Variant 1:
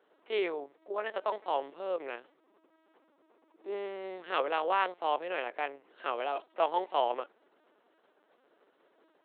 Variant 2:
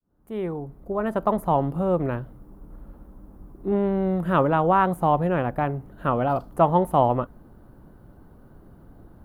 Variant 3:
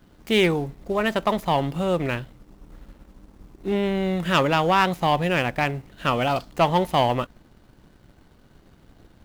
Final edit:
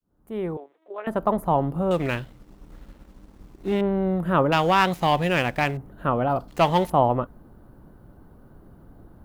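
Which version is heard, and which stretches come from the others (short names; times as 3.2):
2
0.57–1.07 from 1
1.91–3.81 from 3
4.52–5.77 from 3
6.48–6.9 from 3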